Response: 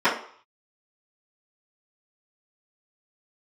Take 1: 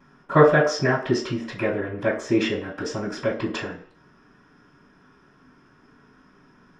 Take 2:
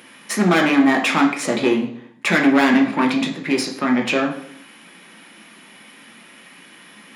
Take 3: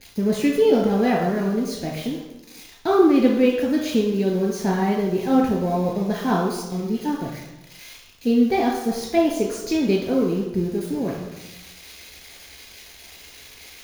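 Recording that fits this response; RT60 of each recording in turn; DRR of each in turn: 1; 0.55 s, 0.75 s, no single decay rate; -15.5 dB, 0.0 dB, -1.0 dB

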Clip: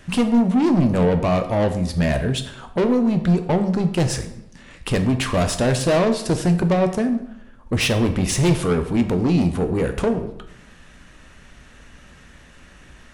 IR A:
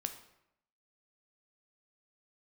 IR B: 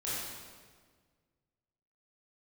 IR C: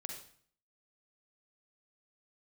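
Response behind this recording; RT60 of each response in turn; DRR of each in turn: A; 0.80 s, 1.6 s, 0.55 s; 7.0 dB, -9.5 dB, 2.0 dB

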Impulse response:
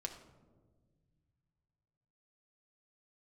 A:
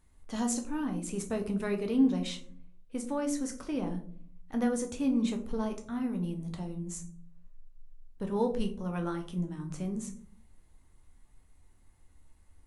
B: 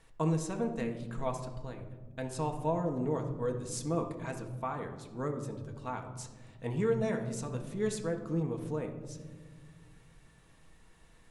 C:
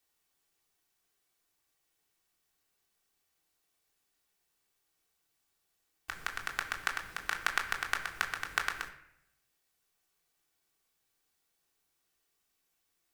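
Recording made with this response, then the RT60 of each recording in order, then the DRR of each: B; 0.55 s, 1.5 s, 0.80 s; 3.5 dB, 2.5 dB, 0.5 dB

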